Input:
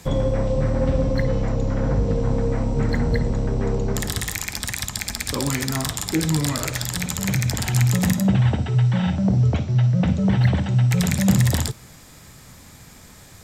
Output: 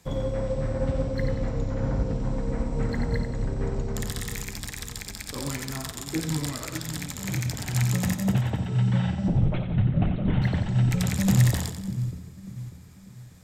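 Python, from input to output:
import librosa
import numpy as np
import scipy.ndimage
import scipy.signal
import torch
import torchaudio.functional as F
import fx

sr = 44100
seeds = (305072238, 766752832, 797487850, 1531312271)

y = fx.lpc_vocoder(x, sr, seeds[0], excitation='whisper', order=16, at=(9.28, 10.42))
y = fx.echo_split(y, sr, split_hz=400.0, low_ms=593, high_ms=90, feedback_pct=52, wet_db=-6.5)
y = fx.upward_expand(y, sr, threshold_db=-31.0, expansion=1.5)
y = y * 10.0 ** (-3.5 / 20.0)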